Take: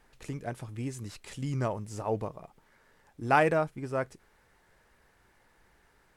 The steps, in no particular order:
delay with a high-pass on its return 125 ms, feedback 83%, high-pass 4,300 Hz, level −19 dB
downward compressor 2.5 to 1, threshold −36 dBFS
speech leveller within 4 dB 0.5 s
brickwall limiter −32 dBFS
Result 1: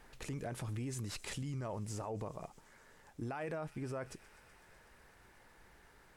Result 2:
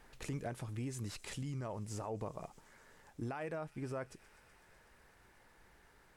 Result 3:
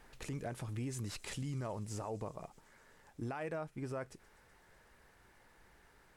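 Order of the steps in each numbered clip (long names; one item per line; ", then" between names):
delay with a high-pass on its return, then speech leveller, then brickwall limiter, then downward compressor
delay with a high-pass on its return, then downward compressor, then brickwall limiter, then speech leveller
downward compressor, then speech leveller, then brickwall limiter, then delay with a high-pass on its return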